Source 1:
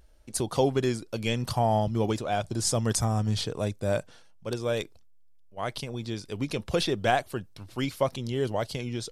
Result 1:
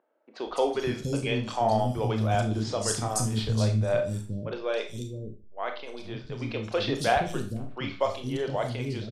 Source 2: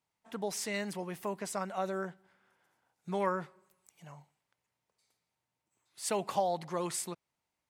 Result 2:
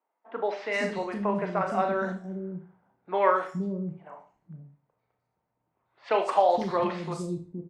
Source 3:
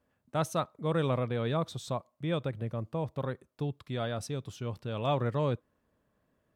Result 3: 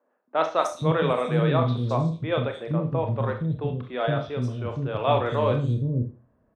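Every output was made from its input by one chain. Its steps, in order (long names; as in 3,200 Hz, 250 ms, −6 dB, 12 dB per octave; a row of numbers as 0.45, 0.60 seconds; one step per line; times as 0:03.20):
low-pass that shuts in the quiet parts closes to 1,100 Hz, open at −22 dBFS
three-band delay without the direct sound mids, highs, lows 210/470 ms, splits 320/4,400 Hz
four-comb reverb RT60 0.35 s, combs from 25 ms, DRR 4.5 dB
normalise the peak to −9 dBFS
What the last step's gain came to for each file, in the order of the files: 0.0, +9.0, +8.5 decibels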